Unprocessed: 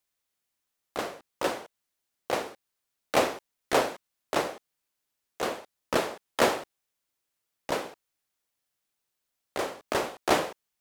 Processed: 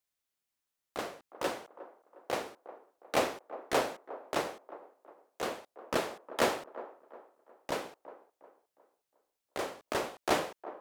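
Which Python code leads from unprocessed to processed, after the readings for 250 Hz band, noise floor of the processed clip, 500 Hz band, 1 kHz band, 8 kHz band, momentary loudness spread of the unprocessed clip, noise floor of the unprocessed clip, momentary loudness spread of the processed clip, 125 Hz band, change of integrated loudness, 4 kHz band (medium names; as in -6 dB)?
-5.0 dB, under -85 dBFS, -5.0 dB, -5.0 dB, -5.0 dB, 16 LU, -83 dBFS, 21 LU, -5.0 dB, -5.5 dB, -5.0 dB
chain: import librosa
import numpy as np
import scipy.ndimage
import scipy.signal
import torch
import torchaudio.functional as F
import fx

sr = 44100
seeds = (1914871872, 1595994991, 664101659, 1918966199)

y = fx.echo_wet_bandpass(x, sr, ms=359, feedback_pct=38, hz=640.0, wet_db=-14.0)
y = y * librosa.db_to_amplitude(-5.0)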